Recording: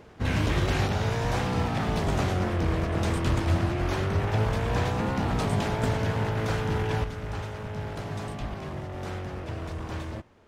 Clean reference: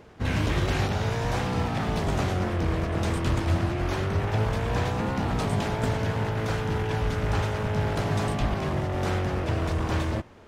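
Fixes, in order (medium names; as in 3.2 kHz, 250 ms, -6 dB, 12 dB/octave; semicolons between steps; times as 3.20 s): trim 0 dB, from 7.04 s +8 dB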